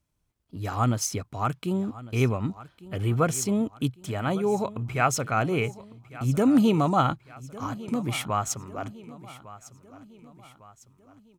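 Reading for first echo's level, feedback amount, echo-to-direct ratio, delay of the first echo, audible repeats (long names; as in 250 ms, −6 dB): −18.0 dB, 47%, −17.0 dB, 1,153 ms, 3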